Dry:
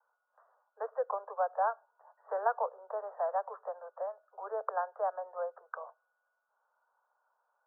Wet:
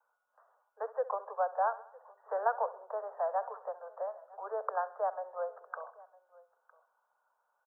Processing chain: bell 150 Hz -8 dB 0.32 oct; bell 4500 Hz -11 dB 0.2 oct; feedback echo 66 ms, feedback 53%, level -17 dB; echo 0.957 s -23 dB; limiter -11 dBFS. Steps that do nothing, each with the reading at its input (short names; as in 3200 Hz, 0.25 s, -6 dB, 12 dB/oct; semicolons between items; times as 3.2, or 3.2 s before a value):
bell 150 Hz: input band starts at 360 Hz; bell 4500 Hz: input band ends at 1800 Hz; limiter -11 dBFS: input peak -17.5 dBFS